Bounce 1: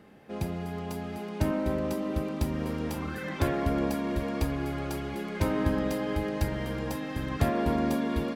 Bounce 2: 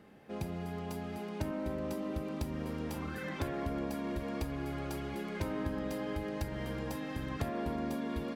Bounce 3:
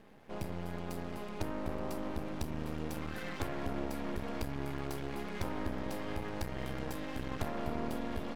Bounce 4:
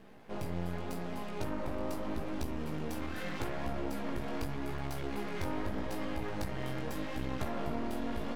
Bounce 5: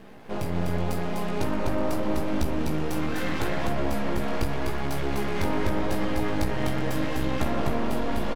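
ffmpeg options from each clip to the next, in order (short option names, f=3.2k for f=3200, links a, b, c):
-af "acompressor=threshold=-31dB:ratio=2.5,volume=-3.5dB"
-af "aeval=exprs='max(val(0),0)':c=same,volume=3dB"
-filter_complex "[0:a]asplit=2[a][b];[b]alimiter=level_in=6.5dB:limit=-24dB:level=0:latency=1,volume=-6.5dB,volume=-1dB[c];[a][c]amix=inputs=2:normalize=0,flanger=delay=15.5:depth=7.2:speed=0.82"
-af "aecho=1:1:251:0.631,volume=8.5dB"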